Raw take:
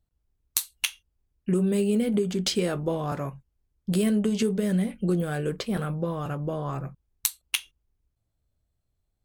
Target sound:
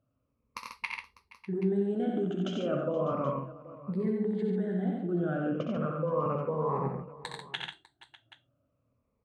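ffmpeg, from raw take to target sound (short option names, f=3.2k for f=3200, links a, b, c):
-filter_complex "[0:a]afftfilt=real='re*pow(10,16/40*sin(2*PI*(0.89*log(max(b,1)*sr/1024/100)/log(2)-(-0.35)*(pts-256)/sr)))':imag='im*pow(10,16/40*sin(2*PI*(0.89*log(max(b,1)*sr/1024/100)/log(2)-(-0.35)*(pts-256)/sr)))':win_size=1024:overlap=0.75,asplit=2[a][b];[b]alimiter=limit=-13.5dB:level=0:latency=1:release=90,volume=0dB[c];[a][c]amix=inputs=2:normalize=0,lowpass=1.3k,areverse,acompressor=threshold=-29dB:ratio=12,areverse,highpass=140,aecho=1:1:64|90|141|474|599|779:0.447|0.631|0.473|0.106|0.112|0.126"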